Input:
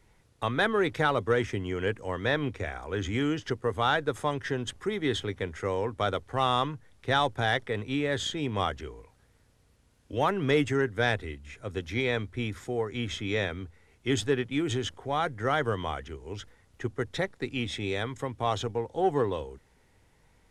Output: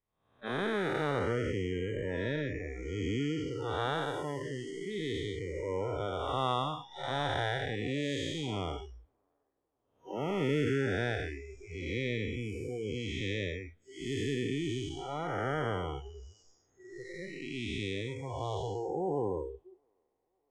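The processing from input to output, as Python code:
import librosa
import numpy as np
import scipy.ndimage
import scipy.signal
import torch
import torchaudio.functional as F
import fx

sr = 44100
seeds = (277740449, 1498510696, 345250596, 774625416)

y = fx.spec_blur(x, sr, span_ms=373.0)
y = fx.echo_wet_bandpass(y, sr, ms=649, feedback_pct=57, hz=580.0, wet_db=-14.5)
y = fx.noise_reduce_blind(y, sr, reduce_db=28)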